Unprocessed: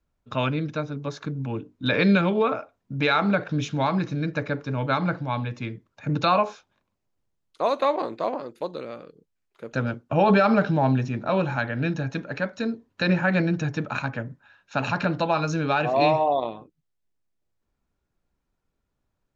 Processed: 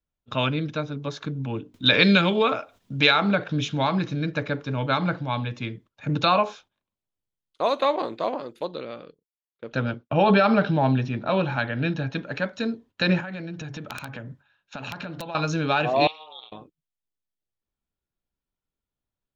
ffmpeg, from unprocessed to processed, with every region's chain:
-filter_complex "[0:a]asettb=1/sr,asplit=3[a][b][c];[a]atrim=end=1.744[d];[b]atrim=start=1.74:end=3.11,asetpts=PTS-STARTPTS,afade=t=in:d=0.004:c=qsin,afade=t=out:st=1.366:d=0.004:c=qsin,highshelf=f=2.4k:g=9,acompressor=mode=upward:threshold=-38dB:ratio=2.5:attack=3.2:release=140:knee=2.83:detection=peak[e];[c]atrim=start=3.106[f];[d][e]acrossfade=d=0.004:c1=hsin:c2=qsin[g];[g][f]acrossfade=d=0.004:c1=qsin:c2=hsin,asettb=1/sr,asplit=3[h][i][j];[h]atrim=end=8.654[k];[i]atrim=start=8.65:end=12.24,asetpts=PTS-STARTPTS,afade=t=in:d=0.004:c=qsin,afade=t=out:st=3.586:d=0.004:c=qsin,lowpass=f=5.4k:w=0.5412,lowpass=f=5.4k:w=1.3066,agate=range=-33dB:threshold=-49dB:ratio=3:release=100:detection=peak[l];[j]atrim=start=12.236[m];[k][l]acrossfade=d=0.004:c1=hsin:c2=qsin[n];[n][m]acrossfade=d=0.004:c1=qsin:c2=hsin,asettb=1/sr,asplit=3[o][p][q];[o]atrim=end=13.204[r];[p]atrim=start=13.2:end=15.35,asetpts=PTS-STARTPTS,afade=t=in:d=0.004:c=qsin,afade=t=out:st=2.146:d=0.004:c=qsin,bandreject=f=46.62:t=h:w=4,bandreject=f=93.24:t=h:w=4,bandreject=f=139.86:t=h:w=4,acompressor=threshold=-32dB:ratio=6:attack=3.2:release=140:knee=1:detection=peak,aeval=exprs='(mod(14.1*val(0)+1,2)-1)/14.1':c=same[s];[q]atrim=start=15.346[t];[r][s]acrossfade=d=0.004:c1=hsin:c2=qsin[u];[u][t]acrossfade=d=0.004:c1=qsin:c2=hsin,asettb=1/sr,asplit=3[v][w][x];[v]atrim=end=16.074[y];[w]atrim=start=16.07:end=16.52,asetpts=PTS-STARTPTS,afade=t=in:d=0.004:c=qsin,afade=t=out:st=0.446:d=0.004:c=qsin,aeval=exprs='val(0)*sin(2*PI*160*n/s)':c=same,bandpass=f=3.6k:t=q:w=2.7[z];[x]atrim=start=16.516[aa];[y][z]acrossfade=d=0.004:c1=hsin:c2=qsin[ab];[ab][aa]acrossfade=d=0.004:c1=qsin:c2=hsin,agate=range=-12dB:threshold=-49dB:ratio=16:detection=peak,equalizer=f=3.3k:w=2.3:g=7"

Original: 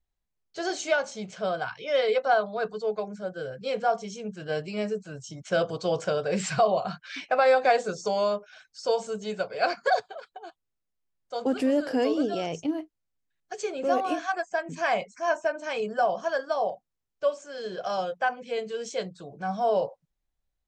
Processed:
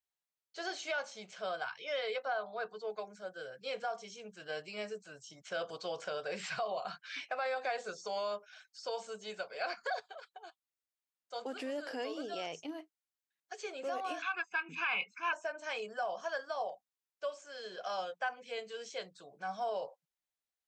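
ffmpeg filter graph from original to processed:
-filter_complex "[0:a]asettb=1/sr,asplit=3[a][b][c];[a]atrim=end=2.224[d];[b]atrim=start=2.22:end=2.9,asetpts=PTS-STARTPTS,afade=t=in:d=0.004:c=qsin,afade=t=out:st=0.676:d=0.004:c=qsin,aemphasis=mode=reproduction:type=50fm,bandreject=f=185.6:t=h:w=4,bandreject=f=371.2:t=h:w=4,bandreject=f=556.8:t=h:w=4,bandreject=f=742.4:t=h:w=4,bandreject=f=928:t=h:w=4[e];[c]atrim=start=2.896[f];[d][e]acrossfade=d=0.004:c1=hsin:c2=qsin[g];[g][f]acrossfade=d=0.004:c1=qsin:c2=hsin,asettb=1/sr,asplit=3[h][i][j];[h]atrim=end=14.224[k];[i]atrim=start=14.22:end=15.33,asetpts=PTS-STARTPTS,afade=t=in:d=0.004:c=qsin,afade=t=out:st=1.106:d=0.004:c=qsin,lowpass=f=2.8k:t=q:w=4.3,aecho=1:1:0.8:0.95,atrim=end_sample=48951[l];[j]atrim=start=15.326[m];[k][l]acrossfade=d=0.004:c1=hsin:c2=qsin[n];[n][m]acrossfade=d=0.004:c1=qsin:c2=hsin,acrossover=split=5000[o][p];[p]acompressor=threshold=-53dB:ratio=4:attack=1:release=60[q];[o][q]amix=inputs=2:normalize=0,alimiter=limit=-19dB:level=0:latency=1:release=99,highpass=f=1.1k:p=1,volume=-3.5dB"

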